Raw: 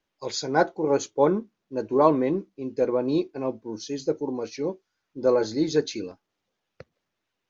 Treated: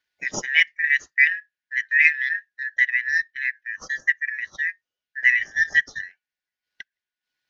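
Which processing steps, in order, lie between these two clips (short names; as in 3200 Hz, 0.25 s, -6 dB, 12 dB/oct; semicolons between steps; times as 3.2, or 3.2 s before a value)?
four-band scrambler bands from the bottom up 4123; transient shaper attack +5 dB, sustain -11 dB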